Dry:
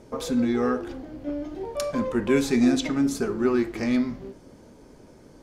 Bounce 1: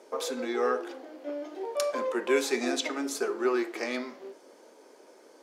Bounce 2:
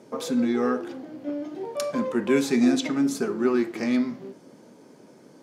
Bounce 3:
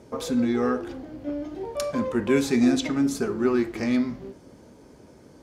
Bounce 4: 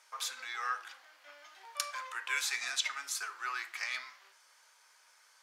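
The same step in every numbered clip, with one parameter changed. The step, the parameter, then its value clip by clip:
high-pass, cutoff frequency: 380 Hz, 150 Hz, 49 Hz, 1.2 kHz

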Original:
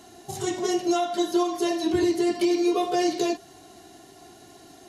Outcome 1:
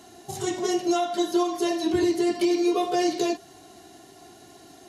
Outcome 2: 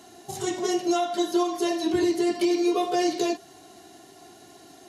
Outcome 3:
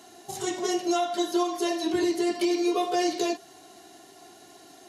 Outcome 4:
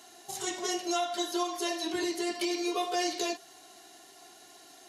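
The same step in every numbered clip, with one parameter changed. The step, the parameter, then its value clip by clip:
high-pass, cutoff frequency: 44 Hz, 130 Hz, 330 Hz, 1.1 kHz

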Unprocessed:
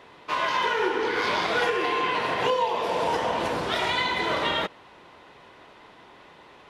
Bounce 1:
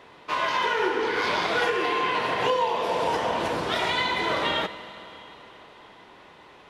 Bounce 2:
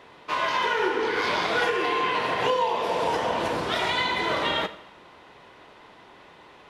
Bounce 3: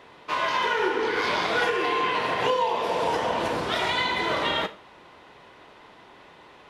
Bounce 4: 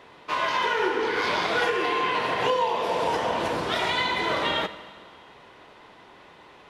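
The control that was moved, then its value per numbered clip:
Schroeder reverb, RT60: 3.8 s, 0.82 s, 0.37 s, 1.8 s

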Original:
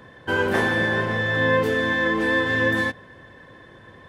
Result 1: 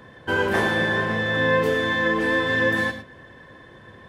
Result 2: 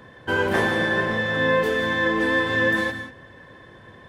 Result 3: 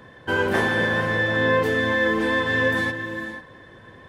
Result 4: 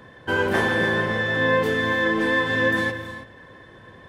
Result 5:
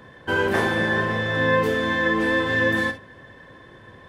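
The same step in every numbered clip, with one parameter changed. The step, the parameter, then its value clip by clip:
gated-style reverb, gate: 130 ms, 210 ms, 520 ms, 350 ms, 80 ms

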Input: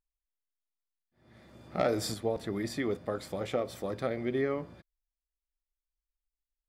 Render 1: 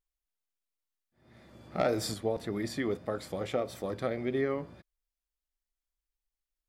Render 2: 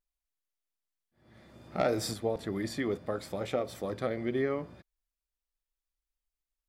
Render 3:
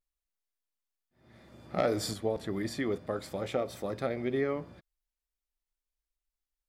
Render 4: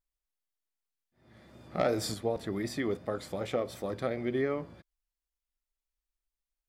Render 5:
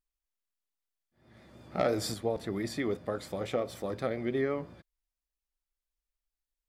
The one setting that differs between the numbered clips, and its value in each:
vibrato, rate: 1.7 Hz, 0.66 Hz, 0.32 Hz, 2.7 Hz, 5.8 Hz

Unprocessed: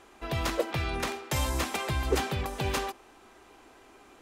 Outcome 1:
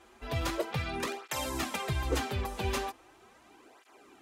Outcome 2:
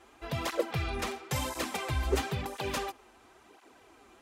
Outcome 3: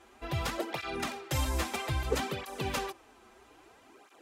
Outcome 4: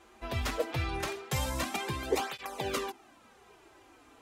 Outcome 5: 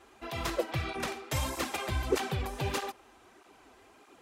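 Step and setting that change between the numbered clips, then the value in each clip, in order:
cancelling through-zero flanger, nulls at: 0.39 Hz, 0.97 Hz, 0.61 Hz, 0.21 Hz, 1.6 Hz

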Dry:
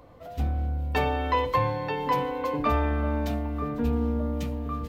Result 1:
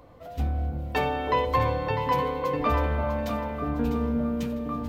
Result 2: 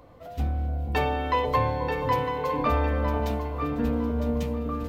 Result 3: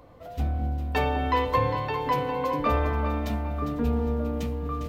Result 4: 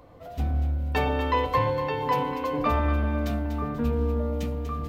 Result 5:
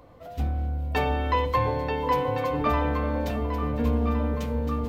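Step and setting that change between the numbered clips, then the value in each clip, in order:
echo whose repeats swap between lows and highs, time: 325 ms, 478 ms, 202 ms, 121 ms, 707 ms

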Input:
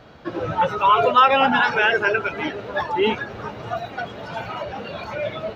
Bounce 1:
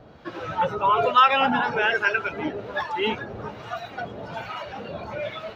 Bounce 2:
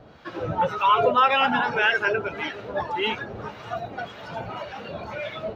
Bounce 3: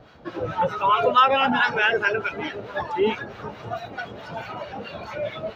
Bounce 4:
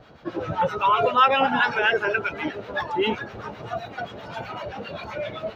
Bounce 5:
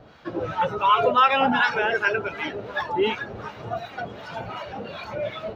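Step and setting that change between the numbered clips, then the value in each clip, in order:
harmonic tremolo, rate: 1.2 Hz, 1.8 Hz, 4.6 Hz, 7.7 Hz, 2.7 Hz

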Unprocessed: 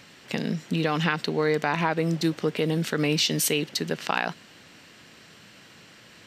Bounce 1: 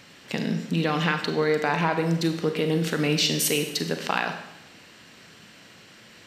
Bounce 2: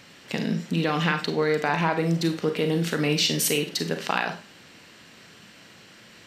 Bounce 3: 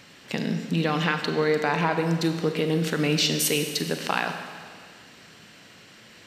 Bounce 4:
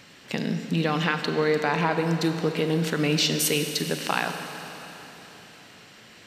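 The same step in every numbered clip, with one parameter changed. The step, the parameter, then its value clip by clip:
Schroeder reverb, RT60: 0.87 s, 0.32 s, 1.9 s, 3.9 s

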